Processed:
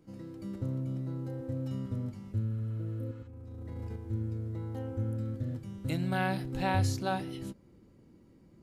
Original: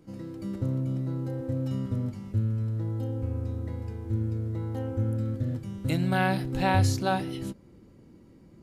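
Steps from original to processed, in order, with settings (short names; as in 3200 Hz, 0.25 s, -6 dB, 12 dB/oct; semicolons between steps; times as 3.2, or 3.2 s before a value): 3.11–3.96 negative-ratio compressor -35 dBFS, ratio -0.5; 2.53–3.24 spectral repair 730–8300 Hz before; gain -5.5 dB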